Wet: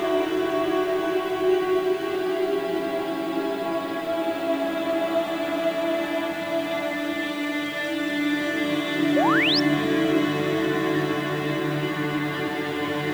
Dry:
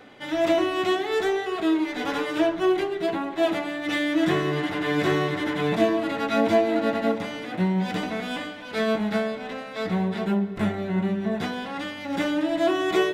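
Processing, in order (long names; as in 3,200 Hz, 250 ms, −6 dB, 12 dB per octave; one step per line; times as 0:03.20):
extreme stretch with random phases 5.6×, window 1.00 s, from 0:02.49
background noise blue −53 dBFS
sound drawn into the spectrogram rise, 0:09.16–0:09.60, 520–5,600 Hz −22 dBFS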